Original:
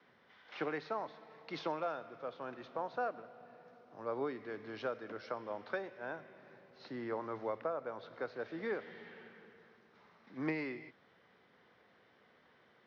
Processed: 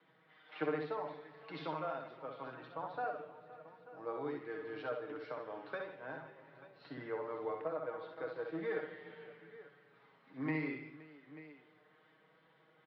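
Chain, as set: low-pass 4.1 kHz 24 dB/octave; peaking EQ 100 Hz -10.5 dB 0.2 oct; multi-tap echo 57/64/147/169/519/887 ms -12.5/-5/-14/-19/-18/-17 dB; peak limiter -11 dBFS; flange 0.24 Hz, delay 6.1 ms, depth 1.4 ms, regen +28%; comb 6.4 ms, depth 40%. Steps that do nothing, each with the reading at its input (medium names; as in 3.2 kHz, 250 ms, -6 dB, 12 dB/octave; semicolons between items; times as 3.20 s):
peak limiter -11 dBFS: peak at its input -23.0 dBFS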